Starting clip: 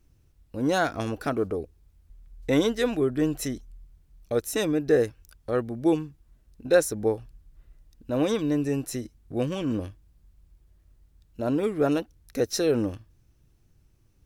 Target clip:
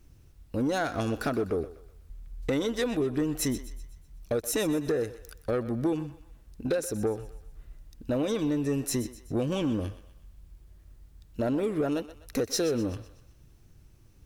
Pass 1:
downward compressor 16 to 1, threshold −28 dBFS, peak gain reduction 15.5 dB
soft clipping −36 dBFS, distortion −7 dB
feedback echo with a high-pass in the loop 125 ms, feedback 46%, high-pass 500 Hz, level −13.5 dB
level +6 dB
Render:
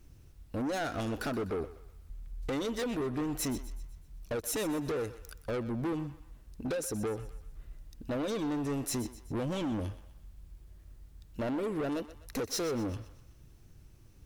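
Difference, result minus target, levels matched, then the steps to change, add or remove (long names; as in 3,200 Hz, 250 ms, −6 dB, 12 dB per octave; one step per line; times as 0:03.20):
soft clipping: distortion +10 dB
change: soft clipping −25.5 dBFS, distortion −18 dB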